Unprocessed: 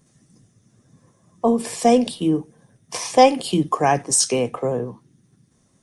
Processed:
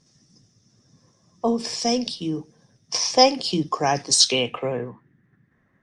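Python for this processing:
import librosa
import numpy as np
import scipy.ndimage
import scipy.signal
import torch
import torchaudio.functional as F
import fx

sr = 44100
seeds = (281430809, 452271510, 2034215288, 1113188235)

y = fx.peak_eq(x, sr, hz=630.0, db=-5.5, octaves=2.8, at=(1.8, 2.37))
y = fx.filter_sweep_lowpass(y, sr, from_hz=5300.0, to_hz=1800.0, start_s=3.94, end_s=4.97, q=5.6)
y = fx.high_shelf(y, sr, hz=3500.0, db=11.5, at=(3.96, 4.89))
y = F.gain(torch.from_numpy(y), -4.0).numpy()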